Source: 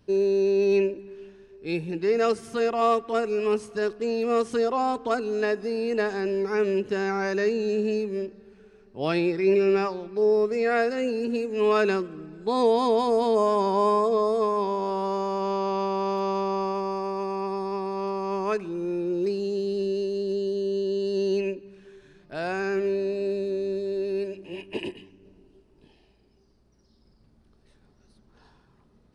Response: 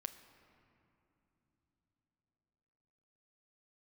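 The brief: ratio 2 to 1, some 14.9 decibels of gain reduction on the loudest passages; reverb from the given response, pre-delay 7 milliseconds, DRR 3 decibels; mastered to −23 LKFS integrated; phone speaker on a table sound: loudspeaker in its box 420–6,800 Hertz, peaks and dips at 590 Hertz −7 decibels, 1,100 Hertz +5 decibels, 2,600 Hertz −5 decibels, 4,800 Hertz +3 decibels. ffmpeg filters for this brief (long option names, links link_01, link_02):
-filter_complex "[0:a]acompressor=threshold=-46dB:ratio=2,asplit=2[link_01][link_02];[1:a]atrim=start_sample=2205,adelay=7[link_03];[link_02][link_03]afir=irnorm=-1:irlink=0,volume=0dB[link_04];[link_01][link_04]amix=inputs=2:normalize=0,highpass=frequency=420:width=0.5412,highpass=frequency=420:width=1.3066,equalizer=frequency=590:width_type=q:width=4:gain=-7,equalizer=frequency=1100:width_type=q:width=4:gain=5,equalizer=frequency=2600:width_type=q:width=4:gain=-5,equalizer=frequency=4800:width_type=q:width=4:gain=3,lowpass=frequency=6800:width=0.5412,lowpass=frequency=6800:width=1.3066,volume=16.5dB"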